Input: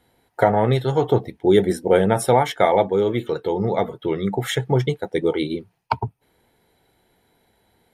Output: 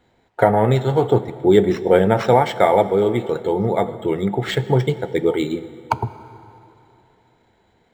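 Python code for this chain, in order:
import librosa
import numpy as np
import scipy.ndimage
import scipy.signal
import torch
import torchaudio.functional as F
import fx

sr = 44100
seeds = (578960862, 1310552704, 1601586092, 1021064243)

y = fx.rev_plate(x, sr, seeds[0], rt60_s=3.0, hf_ratio=0.75, predelay_ms=0, drr_db=13.5)
y = np.interp(np.arange(len(y)), np.arange(len(y))[::4], y[::4])
y = y * librosa.db_to_amplitude(2.0)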